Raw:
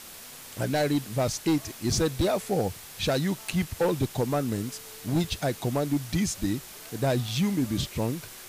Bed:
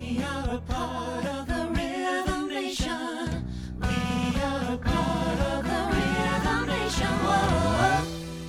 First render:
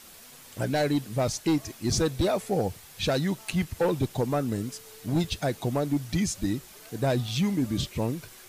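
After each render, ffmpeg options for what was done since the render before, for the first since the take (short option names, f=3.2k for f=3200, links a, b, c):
-af "afftdn=nr=6:nf=-45"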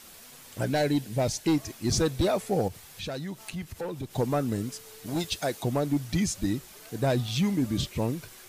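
-filter_complex "[0:a]asettb=1/sr,asplit=3[a][b][c];[a]atrim=end=0.784[d];[b]atrim=start=0.78:end=1.44,asetpts=PTS-STARTPTS,afade=t=in:d=0.004:c=qsin,afade=t=out:st=0.656:d=0.004:c=qsin,equalizer=f=1.2k:t=o:w=0.22:g=-13[e];[c]atrim=start=1.436[f];[d][e]acrossfade=d=0.004:c1=hsin:c2=qsin[g];[g][f]acrossfade=d=0.004:c1=qsin:c2=hsin,asettb=1/sr,asplit=3[h][i][j];[h]atrim=end=2.684[k];[i]atrim=start=2.68:end=4.13,asetpts=PTS-STARTPTS,afade=t=in:d=0.004:c=qsin,afade=t=out:st=1.446:d=0.004:c=qsin,acompressor=threshold=-39dB:ratio=2:attack=3.2:release=140:knee=1:detection=peak[l];[j]atrim=start=4.126[m];[k][l]acrossfade=d=0.004:c1=hsin:c2=qsin[n];[n][m]acrossfade=d=0.004:c1=qsin:c2=hsin,asettb=1/sr,asplit=3[o][p][q];[o]atrim=end=5.064[r];[p]atrim=start=5.06:end=5.63,asetpts=PTS-STARTPTS,afade=t=in:d=0.004:c=qsin,afade=t=out:st=0.566:d=0.004:c=qsin,bass=f=250:g=-9,treble=f=4k:g=4[s];[q]atrim=start=5.626[t];[r][s]acrossfade=d=0.004:c1=hsin:c2=qsin[u];[u][t]acrossfade=d=0.004:c1=qsin:c2=hsin"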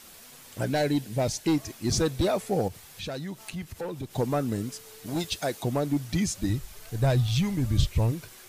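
-filter_complex "[0:a]asplit=3[a][b][c];[a]afade=t=out:st=6.48:d=0.02[d];[b]asubboost=boost=9.5:cutoff=79,afade=t=in:st=6.48:d=0.02,afade=t=out:st=8.11:d=0.02[e];[c]afade=t=in:st=8.11:d=0.02[f];[d][e][f]amix=inputs=3:normalize=0"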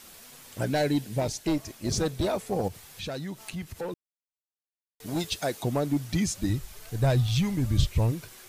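-filter_complex "[0:a]asplit=3[a][b][c];[a]afade=t=out:st=1.19:d=0.02[d];[b]tremolo=f=300:d=0.519,afade=t=in:st=1.19:d=0.02,afade=t=out:st=2.63:d=0.02[e];[c]afade=t=in:st=2.63:d=0.02[f];[d][e][f]amix=inputs=3:normalize=0,asplit=3[g][h][i];[g]atrim=end=3.94,asetpts=PTS-STARTPTS,afade=t=out:st=3.936:d=0.004:c=hsin[j];[h]atrim=start=3.94:end=5,asetpts=PTS-STARTPTS,volume=0[k];[i]atrim=start=5,asetpts=PTS-STARTPTS,afade=t=in:d=0.004:c=hsin[l];[j][k][l]concat=n=3:v=0:a=1"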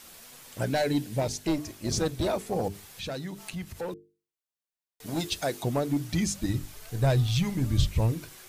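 -af "bandreject=f=50:t=h:w=6,bandreject=f=100:t=h:w=6,bandreject=f=150:t=h:w=6,bandreject=f=200:t=h:w=6,bandreject=f=250:t=h:w=6,bandreject=f=300:t=h:w=6,bandreject=f=350:t=h:w=6,bandreject=f=400:t=h:w=6,bandreject=f=450:t=h:w=6"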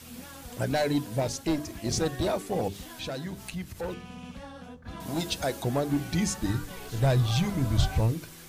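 -filter_complex "[1:a]volume=-16dB[a];[0:a][a]amix=inputs=2:normalize=0"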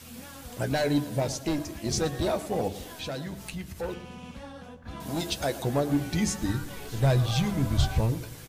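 -filter_complex "[0:a]asplit=2[a][b];[b]adelay=14,volume=-11dB[c];[a][c]amix=inputs=2:normalize=0,asplit=2[d][e];[e]adelay=113,lowpass=f=3.8k:p=1,volume=-15.5dB,asplit=2[f][g];[g]adelay=113,lowpass=f=3.8k:p=1,volume=0.53,asplit=2[h][i];[i]adelay=113,lowpass=f=3.8k:p=1,volume=0.53,asplit=2[j][k];[k]adelay=113,lowpass=f=3.8k:p=1,volume=0.53,asplit=2[l][m];[m]adelay=113,lowpass=f=3.8k:p=1,volume=0.53[n];[d][f][h][j][l][n]amix=inputs=6:normalize=0"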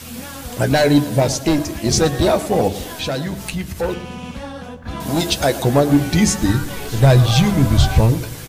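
-af "volume=12dB,alimiter=limit=-2dB:level=0:latency=1"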